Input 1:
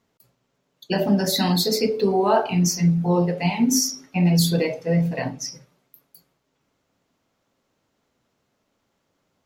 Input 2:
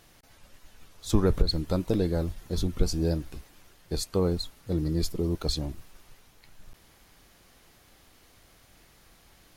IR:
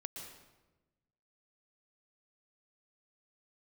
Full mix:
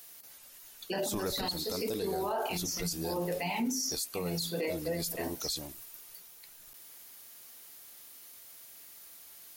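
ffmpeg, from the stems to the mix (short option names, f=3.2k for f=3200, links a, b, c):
-filter_complex "[0:a]highpass=280,volume=-2.5dB[a];[1:a]aemphasis=mode=production:type=riaa,volume=-4dB,asplit=2[b][c];[c]apad=whole_len=417015[d];[a][d]sidechaincompress=threshold=-39dB:ratio=8:attack=30:release=324[e];[e][b]amix=inputs=2:normalize=0,alimiter=level_in=1dB:limit=-24dB:level=0:latency=1:release=22,volume=-1dB"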